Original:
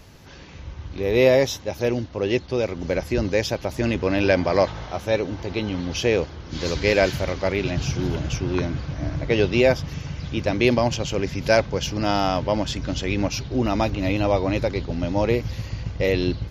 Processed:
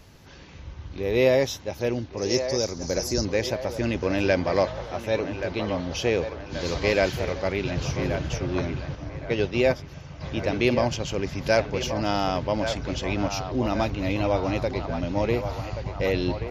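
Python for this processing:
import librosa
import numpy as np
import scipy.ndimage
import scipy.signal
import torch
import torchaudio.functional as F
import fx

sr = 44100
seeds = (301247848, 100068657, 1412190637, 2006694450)

y = fx.high_shelf_res(x, sr, hz=4000.0, db=12.0, q=3.0, at=(2.17, 3.25))
y = fx.echo_banded(y, sr, ms=1129, feedback_pct=71, hz=1000.0, wet_db=-6.5)
y = fx.upward_expand(y, sr, threshold_db=-27.0, expansion=1.5, at=(8.95, 10.21))
y = F.gain(torch.from_numpy(y), -3.5).numpy()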